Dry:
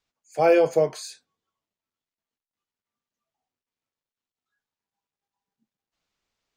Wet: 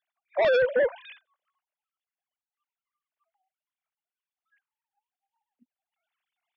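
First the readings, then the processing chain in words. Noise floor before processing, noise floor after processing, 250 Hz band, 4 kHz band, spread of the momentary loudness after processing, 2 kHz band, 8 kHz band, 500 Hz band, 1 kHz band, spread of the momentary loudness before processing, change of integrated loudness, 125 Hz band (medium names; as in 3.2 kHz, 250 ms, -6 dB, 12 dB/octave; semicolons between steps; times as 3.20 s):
under -85 dBFS, under -85 dBFS, -17.5 dB, +0.5 dB, 8 LU, +4.5 dB, under -25 dB, -3.0 dB, -7.0 dB, 20 LU, -3.5 dB, under -10 dB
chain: formants replaced by sine waves; peak limiter -18.5 dBFS, peak gain reduction 10 dB; sine folder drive 4 dB, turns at -18.5 dBFS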